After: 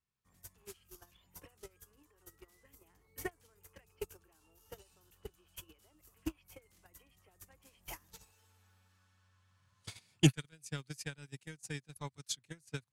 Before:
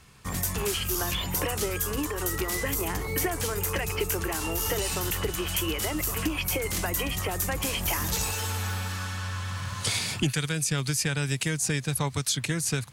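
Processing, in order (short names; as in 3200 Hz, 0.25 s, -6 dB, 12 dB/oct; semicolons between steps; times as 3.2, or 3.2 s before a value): 3.84–6.03 bell 2000 Hz -8.5 dB 0.21 oct; gate -22 dBFS, range -46 dB; gain +7.5 dB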